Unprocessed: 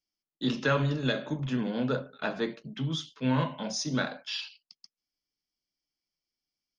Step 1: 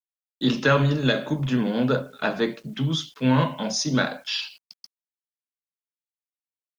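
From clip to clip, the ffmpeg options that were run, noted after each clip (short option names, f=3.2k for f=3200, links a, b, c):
-af "acrusher=bits=10:mix=0:aa=0.000001,volume=7dB"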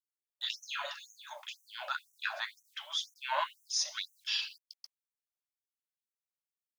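-af "afftfilt=real='re*gte(b*sr/1024,530*pow(5800/530,0.5+0.5*sin(2*PI*2*pts/sr)))':imag='im*gte(b*sr/1024,530*pow(5800/530,0.5+0.5*sin(2*PI*2*pts/sr)))':win_size=1024:overlap=0.75,volume=-5dB"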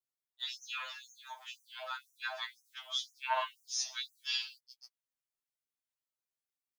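-af "afftfilt=real='re*2.45*eq(mod(b,6),0)':imag='im*2.45*eq(mod(b,6),0)':win_size=2048:overlap=0.75"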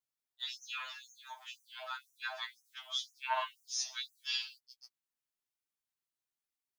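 -af "equalizer=f=520:w=5:g=-8,volume=-1dB"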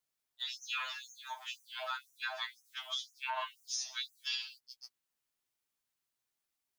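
-af "alimiter=level_in=8dB:limit=-24dB:level=0:latency=1:release=323,volume=-8dB,volume=5dB"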